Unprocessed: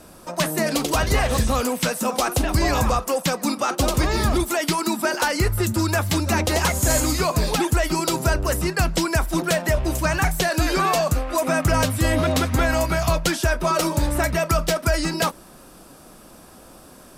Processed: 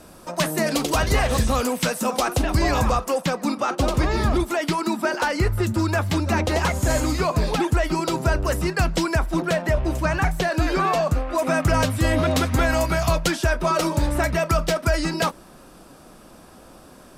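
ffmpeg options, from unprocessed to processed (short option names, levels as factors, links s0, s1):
-af "asetnsamples=n=441:p=0,asendcmd='2.2 lowpass f 5700;3.21 lowpass f 2900;8.34 lowpass f 5000;9.15 lowpass f 2400;11.39 lowpass f 5700;12.31 lowpass f 11000;13.28 lowpass f 5500',lowpass=f=11000:p=1"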